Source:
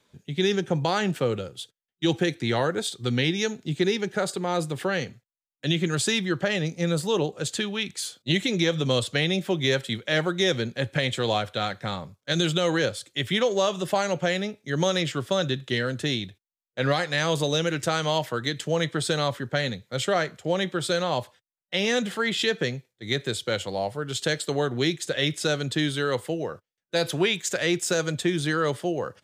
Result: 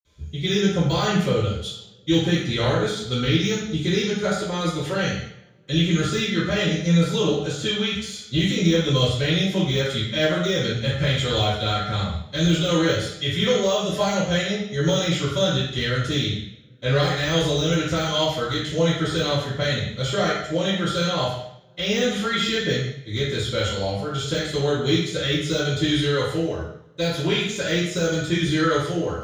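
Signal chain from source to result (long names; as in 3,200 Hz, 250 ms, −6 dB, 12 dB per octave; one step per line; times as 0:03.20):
de-essing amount 75%
convolution reverb RT60 0.85 s, pre-delay 46 ms
level −5.5 dB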